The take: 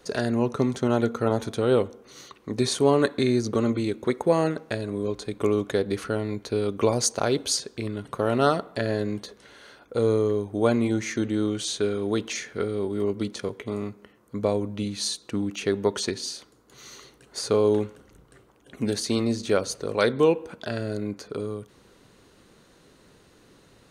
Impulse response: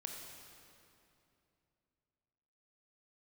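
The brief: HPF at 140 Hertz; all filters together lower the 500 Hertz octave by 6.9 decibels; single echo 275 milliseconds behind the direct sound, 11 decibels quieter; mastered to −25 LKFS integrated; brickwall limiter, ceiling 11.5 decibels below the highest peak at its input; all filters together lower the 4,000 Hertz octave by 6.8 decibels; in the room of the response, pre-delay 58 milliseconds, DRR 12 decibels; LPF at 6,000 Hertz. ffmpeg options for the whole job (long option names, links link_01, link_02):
-filter_complex "[0:a]highpass=140,lowpass=6000,equalizer=frequency=500:width_type=o:gain=-8.5,equalizer=frequency=4000:width_type=o:gain=-7,alimiter=limit=-21dB:level=0:latency=1,aecho=1:1:275:0.282,asplit=2[link_01][link_02];[1:a]atrim=start_sample=2205,adelay=58[link_03];[link_02][link_03]afir=irnorm=-1:irlink=0,volume=-10dB[link_04];[link_01][link_04]amix=inputs=2:normalize=0,volume=8dB"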